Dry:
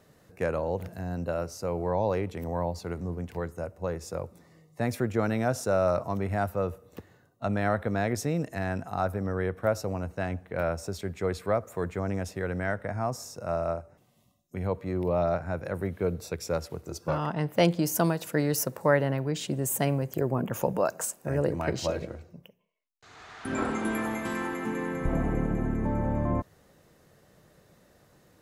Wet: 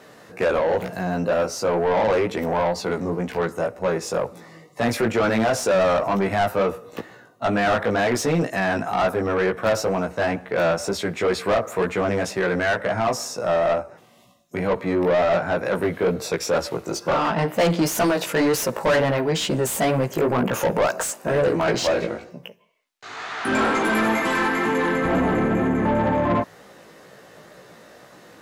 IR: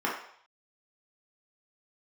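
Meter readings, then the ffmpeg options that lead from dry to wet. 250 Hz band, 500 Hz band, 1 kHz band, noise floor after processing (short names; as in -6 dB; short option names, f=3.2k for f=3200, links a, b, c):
+7.0 dB, +8.5 dB, +10.0 dB, -49 dBFS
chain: -filter_complex "[0:a]flanger=delay=15.5:depth=3.1:speed=2.1,asplit=2[a][b];[b]highpass=f=720:p=1,volume=27dB,asoftclip=type=tanh:threshold=-11.5dB[c];[a][c]amix=inputs=2:normalize=0,lowpass=f=3.7k:p=1,volume=-6dB,equalizer=f=220:w=0.95:g=3"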